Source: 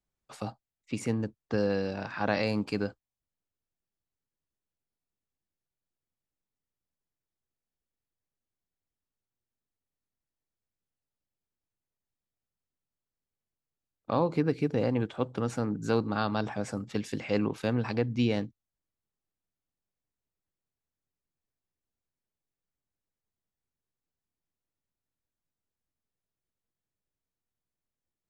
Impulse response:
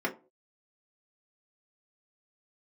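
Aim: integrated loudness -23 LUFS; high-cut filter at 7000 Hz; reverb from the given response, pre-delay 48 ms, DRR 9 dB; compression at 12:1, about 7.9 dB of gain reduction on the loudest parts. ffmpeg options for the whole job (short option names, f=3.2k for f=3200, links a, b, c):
-filter_complex "[0:a]lowpass=7k,acompressor=threshold=-29dB:ratio=12,asplit=2[a][b];[1:a]atrim=start_sample=2205,adelay=48[c];[b][c]afir=irnorm=-1:irlink=0,volume=-17.5dB[d];[a][d]amix=inputs=2:normalize=0,volume=13dB"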